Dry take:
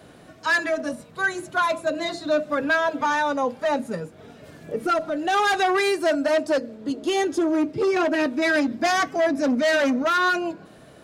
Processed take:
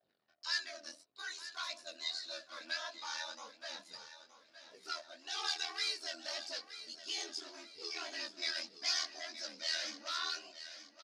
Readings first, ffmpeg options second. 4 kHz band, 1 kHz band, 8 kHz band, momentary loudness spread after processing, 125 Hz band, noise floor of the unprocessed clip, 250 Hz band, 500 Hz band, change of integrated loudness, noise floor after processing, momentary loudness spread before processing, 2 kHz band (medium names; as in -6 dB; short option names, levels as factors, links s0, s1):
-4.5 dB, -24.0 dB, -7.0 dB, 13 LU, under -35 dB, -48 dBFS, -35.0 dB, -30.0 dB, -17.0 dB, -71 dBFS, 8 LU, -19.0 dB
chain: -af "anlmdn=0.0398,aeval=exprs='val(0)*sin(2*PI*40*n/s)':c=same,aphaser=in_gain=1:out_gain=1:delay=3.6:decay=0.38:speed=0.55:type=triangular,bandpass=f=4900:t=q:w=4.2:csg=0,flanger=delay=17.5:depth=7.1:speed=1.7,aecho=1:1:920|1840|2760|3680:0.224|0.0895|0.0358|0.0143,volume=2.24"